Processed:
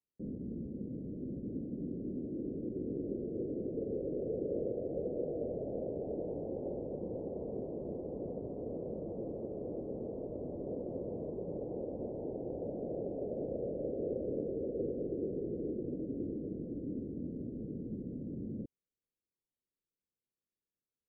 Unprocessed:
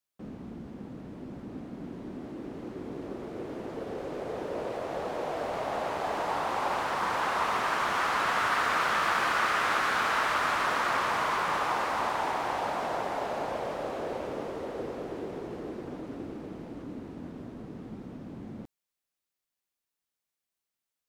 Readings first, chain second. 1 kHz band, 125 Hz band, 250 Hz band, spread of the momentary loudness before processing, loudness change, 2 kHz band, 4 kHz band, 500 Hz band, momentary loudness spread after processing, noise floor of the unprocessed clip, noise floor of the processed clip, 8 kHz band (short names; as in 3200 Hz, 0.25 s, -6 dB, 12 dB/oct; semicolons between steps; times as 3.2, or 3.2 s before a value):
-29.5 dB, +1.0 dB, +1.0 dB, 17 LU, -9.5 dB, under -40 dB, under -40 dB, -2.5 dB, 5 LU, under -85 dBFS, under -85 dBFS, under -35 dB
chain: steep low-pass 530 Hz 48 dB/oct; gain +1 dB